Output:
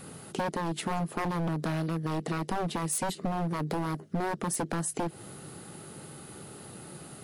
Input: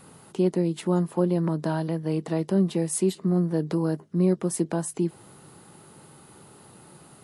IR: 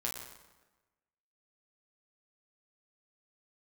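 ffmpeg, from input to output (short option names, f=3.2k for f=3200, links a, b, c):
-af "equalizer=f=970:t=o:w=0.35:g=-8.5,aeval=exprs='0.0668*(abs(mod(val(0)/0.0668+3,4)-2)-1)':c=same,acompressor=threshold=-33dB:ratio=6,volume=5dB"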